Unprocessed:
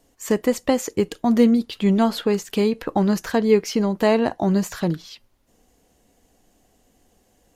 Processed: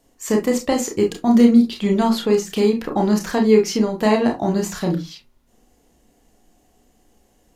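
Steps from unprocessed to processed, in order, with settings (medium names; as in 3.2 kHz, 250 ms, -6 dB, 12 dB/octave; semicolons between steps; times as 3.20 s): on a send at -2 dB: reverberation RT60 0.20 s, pre-delay 28 ms; on the sum: dynamic bell 6.5 kHz, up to +4 dB, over -41 dBFS, Q 0.9; trim -1 dB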